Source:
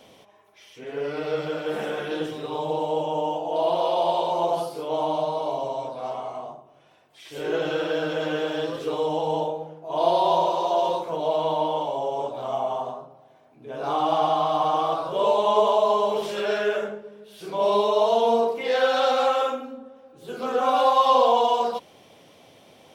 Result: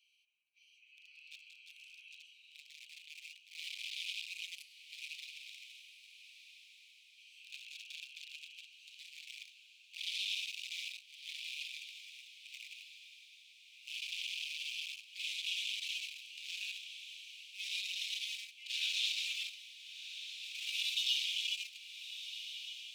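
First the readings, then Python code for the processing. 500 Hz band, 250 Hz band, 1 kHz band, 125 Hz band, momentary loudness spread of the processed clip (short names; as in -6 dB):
under -40 dB, under -40 dB, under -40 dB, under -40 dB, 21 LU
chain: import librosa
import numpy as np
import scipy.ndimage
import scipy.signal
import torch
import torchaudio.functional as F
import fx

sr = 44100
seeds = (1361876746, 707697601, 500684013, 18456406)

y = fx.wiener(x, sr, points=25)
y = scipy.signal.sosfilt(scipy.signal.cheby1(6, 1.0, 2400.0, 'highpass', fs=sr, output='sos'), y)
y = fx.echo_diffused(y, sr, ms=1317, feedback_pct=41, wet_db=-10.0)
y = y * 10.0 ** (3.5 / 20.0)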